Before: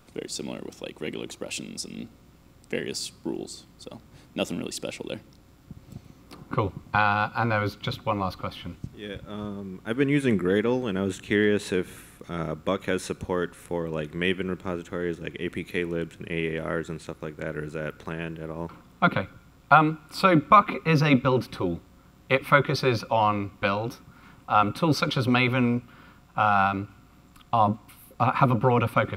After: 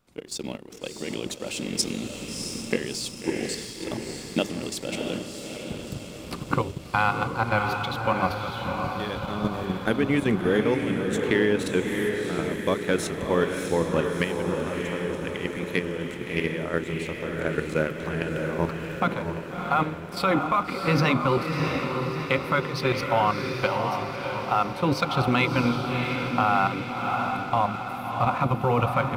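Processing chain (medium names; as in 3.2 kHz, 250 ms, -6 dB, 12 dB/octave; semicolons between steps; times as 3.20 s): recorder AGC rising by 5.8 dB/s; hum notches 50/100/150/200/250/300/350/400 Hz; level held to a coarse grid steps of 11 dB; echo that smears into a reverb 661 ms, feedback 57%, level -4.5 dB; waveshaping leveller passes 1; trim -3 dB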